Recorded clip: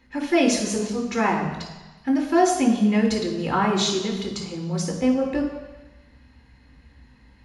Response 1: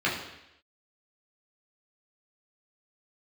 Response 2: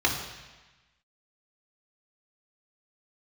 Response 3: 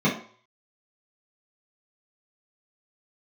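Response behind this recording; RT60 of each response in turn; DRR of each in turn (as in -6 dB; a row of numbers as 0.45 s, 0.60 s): 2; 0.85 s, 1.2 s, 0.50 s; -6.5 dB, -1.0 dB, -8.5 dB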